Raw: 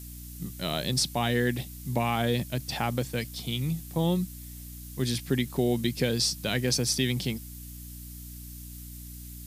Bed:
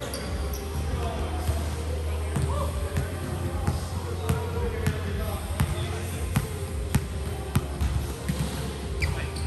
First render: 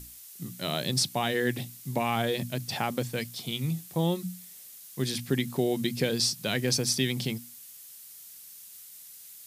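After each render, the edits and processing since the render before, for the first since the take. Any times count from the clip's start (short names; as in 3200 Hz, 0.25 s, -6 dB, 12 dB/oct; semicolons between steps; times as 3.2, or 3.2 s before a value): notches 60/120/180/240/300 Hz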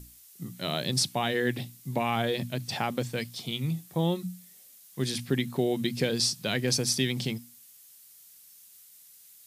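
noise print and reduce 6 dB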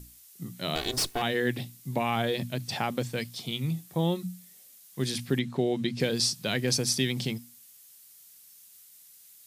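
0.75–1.22 minimum comb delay 2.7 ms; 5.39–6 air absorption 63 m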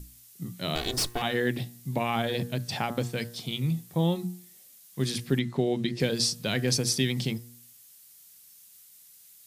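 low shelf 160 Hz +5 dB; de-hum 118.7 Hz, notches 17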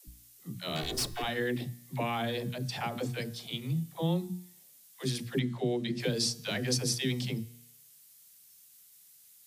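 resonator 150 Hz, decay 1.2 s, mix 40%; dispersion lows, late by 78 ms, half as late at 390 Hz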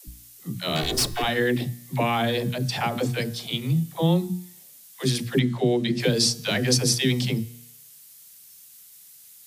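gain +9 dB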